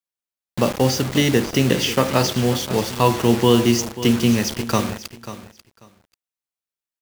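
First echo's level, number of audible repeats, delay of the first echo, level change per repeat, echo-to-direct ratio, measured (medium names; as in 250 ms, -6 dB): -14.0 dB, 2, 540 ms, -15.0 dB, -14.0 dB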